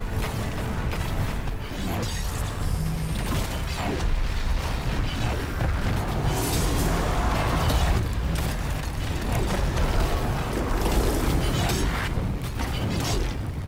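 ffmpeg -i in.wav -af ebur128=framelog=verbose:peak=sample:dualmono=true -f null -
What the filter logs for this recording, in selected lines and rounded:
Integrated loudness:
  I:         -23.9 LUFS
  Threshold: -33.9 LUFS
Loudness range:
  LRA:         3.6 LU
  Threshold: -43.7 LUFS
  LRA low:   -25.9 LUFS
  LRA high:  -22.3 LUFS
Sample peak:
  Peak:      -11.1 dBFS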